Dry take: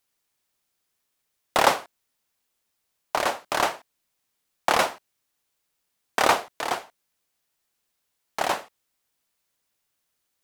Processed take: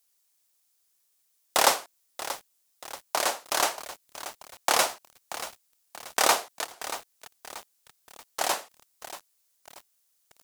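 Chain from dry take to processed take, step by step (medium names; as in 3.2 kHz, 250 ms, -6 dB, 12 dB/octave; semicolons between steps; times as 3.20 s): tone controls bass -8 dB, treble +11 dB; 6.64–8.39 s: compression 16:1, threshold -41 dBFS, peak gain reduction 21.5 dB; bit-crushed delay 633 ms, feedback 55%, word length 5-bit, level -12 dB; trim -3.5 dB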